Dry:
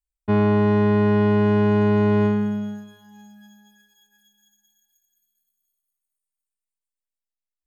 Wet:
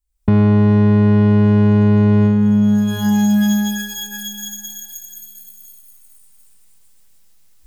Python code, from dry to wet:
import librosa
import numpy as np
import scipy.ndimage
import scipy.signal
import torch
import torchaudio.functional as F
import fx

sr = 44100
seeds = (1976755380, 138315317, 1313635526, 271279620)

p1 = fx.recorder_agc(x, sr, target_db=-13.5, rise_db_per_s=49.0, max_gain_db=30)
p2 = fx.bass_treble(p1, sr, bass_db=11, treble_db=5)
p3 = 10.0 ** (-18.0 / 20.0) * np.tanh(p2 / 10.0 ** (-18.0 / 20.0))
p4 = p2 + (p3 * 10.0 ** (-9.5 / 20.0))
y = p4 * 10.0 ** (-2.0 / 20.0)